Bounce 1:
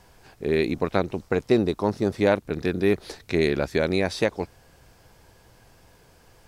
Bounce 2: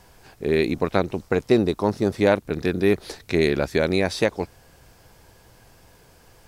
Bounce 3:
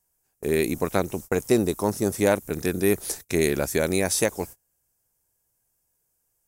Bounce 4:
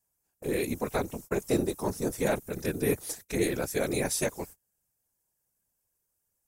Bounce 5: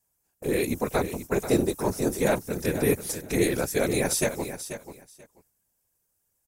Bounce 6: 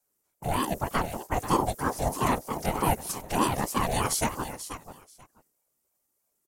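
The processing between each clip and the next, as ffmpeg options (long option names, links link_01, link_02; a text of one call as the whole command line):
ffmpeg -i in.wav -af "highshelf=frequency=9000:gain=4,volume=2dB" out.wav
ffmpeg -i in.wav -af "aexciter=amount=8.7:drive=4.6:freq=6100,agate=range=-28dB:threshold=-34dB:ratio=16:detection=peak,volume=-2.5dB" out.wav
ffmpeg -i in.wav -af "afftfilt=real='hypot(re,im)*cos(2*PI*random(0))':imag='hypot(re,im)*sin(2*PI*random(1))':win_size=512:overlap=0.75" out.wav
ffmpeg -i in.wav -af "aecho=1:1:486|972:0.282|0.0479,volume=4dB" out.wav
ffmpeg -i in.wav -af "aeval=exprs='val(0)*sin(2*PI*490*n/s+490*0.4/3.2*sin(2*PI*3.2*n/s))':channel_layout=same,volume=1dB" out.wav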